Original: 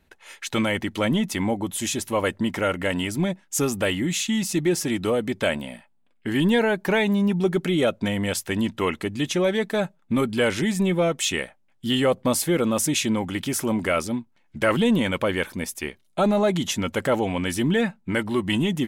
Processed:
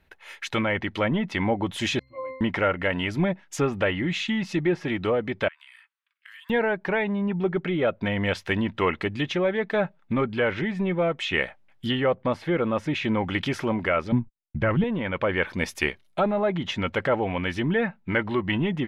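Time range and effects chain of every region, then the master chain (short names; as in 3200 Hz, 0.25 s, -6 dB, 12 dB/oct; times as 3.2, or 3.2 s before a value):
1.99–2.41 bell 2000 Hz +4 dB 0.28 oct + octave resonator C, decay 0.78 s
5.48–6.5 steep high-pass 1100 Hz 48 dB/oct + compressor, threshold -45 dBFS
14.12–14.84 gate -53 dBFS, range -46 dB + tone controls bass +13 dB, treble -2 dB + mismatched tape noise reduction decoder only
whole clip: treble ducked by the level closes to 2100 Hz, closed at -19 dBFS; graphic EQ 250/2000/8000 Hz -5/+3/-10 dB; vocal rider 0.5 s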